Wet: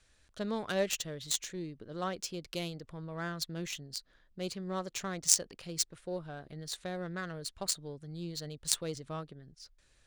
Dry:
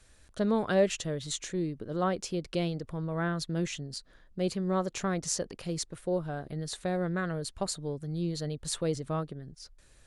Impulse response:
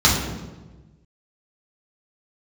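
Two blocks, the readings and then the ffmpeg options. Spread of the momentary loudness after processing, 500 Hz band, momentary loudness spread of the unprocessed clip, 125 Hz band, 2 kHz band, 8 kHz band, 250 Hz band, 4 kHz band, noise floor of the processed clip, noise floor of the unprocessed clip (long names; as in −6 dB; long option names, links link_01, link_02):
12 LU, −7.5 dB, 9 LU, −9.0 dB, −3.5 dB, +4.5 dB, −8.5 dB, +2.0 dB, −68 dBFS, −59 dBFS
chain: -af "adynamicsmooth=sensitivity=5:basefreq=3700,crystalizer=i=6:c=0,aeval=exprs='1.06*(cos(1*acos(clip(val(0)/1.06,-1,1)))-cos(1*PI/2))+0.0841*(cos(7*acos(clip(val(0)/1.06,-1,1)))-cos(7*PI/2))':channel_layout=same,volume=-2dB"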